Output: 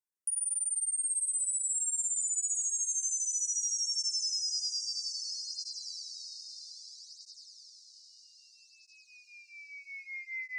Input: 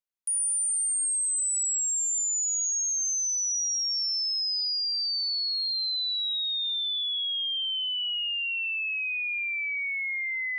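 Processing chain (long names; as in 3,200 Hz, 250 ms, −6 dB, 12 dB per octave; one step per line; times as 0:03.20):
Chebyshev band-stop filter 1,900–5,200 Hz, order 3
parametric band 8,500 Hz +8 dB 0.28 octaves
downward compressor, threshold −29 dBFS, peak gain reduction 9.5 dB
feedback delay with all-pass diffusion 911 ms, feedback 48%, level −6.5 dB
through-zero flanger with one copy inverted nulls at 0.62 Hz, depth 1.7 ms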